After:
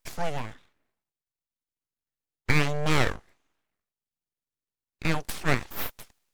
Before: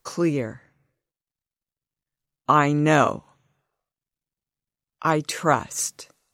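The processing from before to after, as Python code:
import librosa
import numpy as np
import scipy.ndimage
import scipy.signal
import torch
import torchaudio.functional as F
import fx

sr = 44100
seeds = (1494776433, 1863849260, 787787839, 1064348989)

y = fx.highpass(x, sr, hz=220.0, slope=6)
y = np.abs(y)
y = y * librosa.db_to_amplitude(-2.5)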